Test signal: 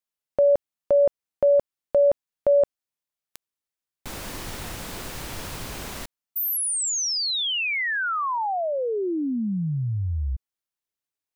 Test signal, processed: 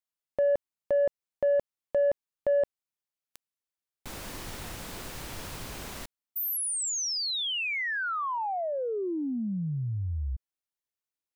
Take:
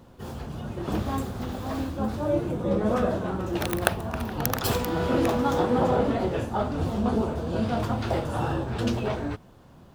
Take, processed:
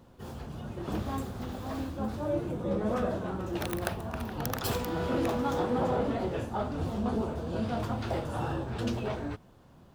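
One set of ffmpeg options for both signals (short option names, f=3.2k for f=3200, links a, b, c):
-af "asoftclip=type=tanh:threshold=-13dB,volume=-5dB"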